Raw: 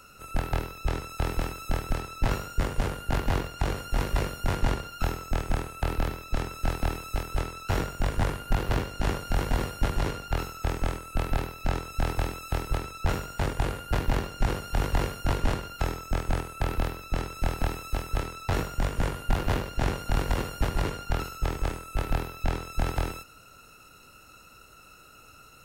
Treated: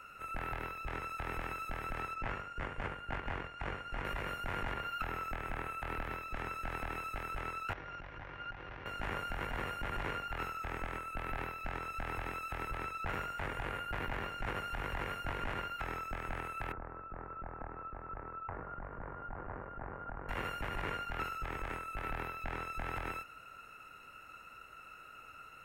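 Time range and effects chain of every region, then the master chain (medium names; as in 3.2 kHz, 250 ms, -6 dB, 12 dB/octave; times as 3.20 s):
2.14–4.05 s: transient shaper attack +1 dB, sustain -6 dB + distance through air 52 m + band-stop 3.9 kHz, Q 18
4.72–5.75 s: peaking EQ 6.8 kHz -4 dB 1.4 oct + tape noise reduction on one side only encoder only
7.73–8.86 s: comb of notches 220 Hz + compression 10:1, threshold -38 dBFS + steep low-pass 6.3 kHz 96 dB/octave
16.72–20.29 s: low-pass 1.4 kHz 24 dB/octave + compression 3:1, threshold -37 dBFS
whole clip: resonant high shelf 3.2 kHz -13.5 dB, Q 1.5; peak limiter -23.5 dBFS; tilt shelf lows -5.5 dB, about 670 Hz; trim -3.5 dB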